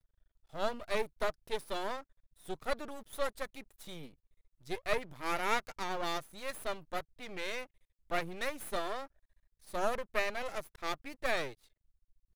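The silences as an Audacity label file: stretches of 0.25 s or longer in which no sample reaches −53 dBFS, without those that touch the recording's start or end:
2.030000	2.370000	silence
4.140000	4.620000	silence
7.660000	8.100000	silence
9.070000	9.620000	silence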